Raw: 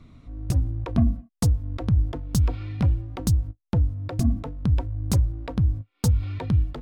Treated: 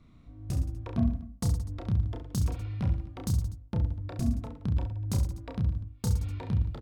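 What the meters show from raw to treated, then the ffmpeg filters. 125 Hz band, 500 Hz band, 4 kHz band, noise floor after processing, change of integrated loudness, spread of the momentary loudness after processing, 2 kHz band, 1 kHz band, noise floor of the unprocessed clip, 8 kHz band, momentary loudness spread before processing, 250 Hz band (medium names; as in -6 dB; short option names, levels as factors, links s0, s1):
-6.5 dB, -7.0 dB, -7.0 dB, -54 dBFS, -6.5 dB, 3 LU, -7.0 dB, -7.0 dB, -72 dBFS, -7.0 dB, 3 LU, -6.0 dB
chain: -af "aecho=1:1:30|67.5|114.4|173|246.2:0.631|0.398|0.251|0.158|0.1,volume=0.355"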